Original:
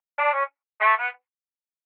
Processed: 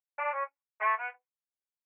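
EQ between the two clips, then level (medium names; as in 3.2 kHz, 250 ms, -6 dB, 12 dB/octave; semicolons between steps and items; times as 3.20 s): distance through air 400 m; cabinet simulation 350–2400 Hz, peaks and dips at 400 Hz -6 dB, 600 Hz -7 dB, 870 Hz -6 dB, 1.3 kHz -9 dB, 2 kHz -6 dB; -1.0 dB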